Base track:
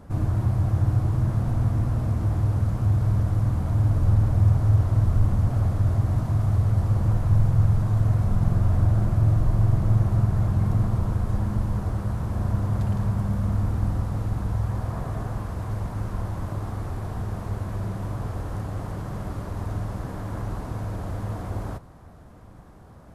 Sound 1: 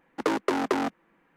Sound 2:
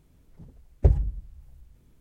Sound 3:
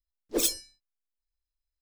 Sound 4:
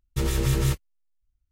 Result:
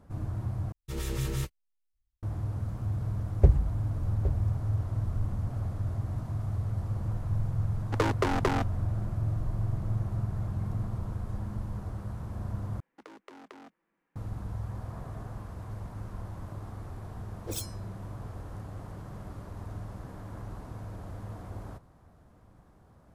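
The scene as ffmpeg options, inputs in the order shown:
ffmpeg -i bed.wav -i cue0.wav -i cue1.wav -i cue2.wav -i cue3.wav -filter_complex "[1:a]asplit=2[link_01][link_02];[0:a]volume=-10.5dB[link_03];[4:a]dynaudnorm=framelen=140:gausssize=3:maxgain=9dB[link_04];[2:a]aecho=1:1:815:0.282[link_05];[link_01]equalizer=frequency=300:width_type=o:width=0.77:gain=-3[link_06];[link_02]acompressor=threshold=-34dB:ratio=6:attack=6.6:release=55:knee=1:detection=peak[link_07];[link_03]asplit=3[link_08][link_09][link_10];[link_08]atrim=end=0.724[link_11];[link_04]atrim=end=1.51,asetpts=PTS-STARTPTS,volume=-16.5dB[link_12];[link_09]atrim=start=2.226:end=12.804[link_13];[link_07]atrim=end=1.36,asetpts=PTS-STARTPTS,volume=-15dB[link_14];[link_10]atrim=start=14.156[link_15];[link_05]atrim=end=2,asetpts=PTS-STARTPTS,volume=-0.5dB,afade=type=in:duration=0.004:curve=hsin,afade=type=out:start_time=1.996:duration=0.004:curve=hsin,adelay=2590[link_16];[link_06]atrim=end=1.36,asetpts=PTS-STARTPTS,volume=-1.5dB,afade=type=in:duration=0.004:curve=hsin,afade=type=out:start_time=1.356:duration=0.004:curve=hsin,adelay=7740[link_17];[3:a]atrim=end=1.81,asetpts=PTS-STARTPTS,volume=-11.5dB,afade=type=in:duration=0.004:curve=hsin,afade=type=out:start_time=1.806:duration=0.004:curve=hsin,adelay=17130[link_18];[link_11][link_12]acrossfade=duration=0.004:curve1=hsin:curve2=hsin[link_19];[link_19][link_13]acrossfade=duration=0.004:curve1=hsin:curve2=hsin[link_20];[link_20][link_14]acrossfade=duration=0.004:curve1=hsin:curve2=hsin[link_21];[link_21][link_15]acrossfade=duration=0.004:curve1=hsin:curve2=hsin[link_22];[link_22][link_16][link_17][link_18]amix=inputs=4:normalize=0" out.wav

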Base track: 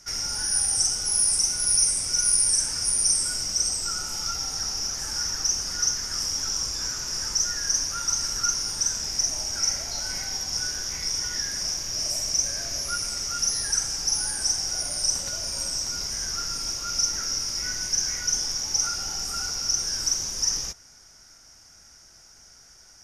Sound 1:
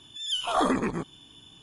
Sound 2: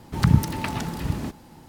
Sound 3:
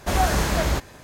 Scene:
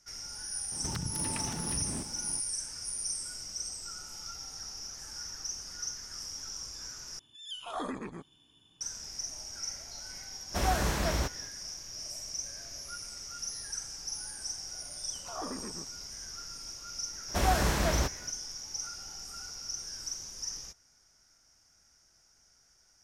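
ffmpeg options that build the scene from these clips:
ffmpeg -i bed.wav -i cue0.wav -i cue1.wav -i cue2.wav -filter_complex "[1:a]asplit=2[link_01][link_02];[3:a]asplit=2[link_03][link_04];[0:a]volume=-13.5dB[link_05];[2:a]acompressor=threshold=-33dB:ratio=6:attack=3.2:release=140:knee=1:detection=peak[link_06];[link_02]lowpass=1800[link_07];[link_05]asplit=2[link_08][link_09];[link_08]atrim=end=7.194[link_10];[link_01]atrim=end=1.62,asetpts=PTS-STARTPTS,volume=-12.5dB[link_11];[link_09]atrim=start=8.806[link_12];[link_06]atrim=end=1.68,asetpts=PTS-STARTPTS,volume=-1dB,afade=type=in:duration=0.004:curve=hsin,afade=type=out:start_time=1.676:duration=0.004:curve=hsin,adelay=720[link_13];[link_03]atrim=end=1.03,asetpts=PTS-STARTPTS,volume=-8dB,afade=type=in:duration=0.05,afade=type=out:start_time=0.98:duration=0.05,adelay=10480[link_14];[link_07]atrim=end=1.62,asetpts=PTS-STARTPTS,volume=-15dB,afade=type=in:duration=0.004:curve=hsin,afade=type=out:start_time=1.616:duration=0.004:curve=hsin,adelay=14810[link_15];[link_04]atrim=end=1.03,asetpts=PTS-STARTPTS,volume=-6dB,afade=type=in:duration=0.004:curve=hsin,afade=type=out:start_time=1.026:duration=0.004:curve=hsin,adelay=17280[link_16];[link_10][link_11]acrossfade=duration=0.004:curve1=hsin:curve2=hsin[link_17];[link_17][link_12]acrossfade=duration=0.004:curve1=hsin:curve2=hsin[link_18];[link_18][link_13][link_14][link_15][link_16]amix=inputs=5:normalize=0" out.wav

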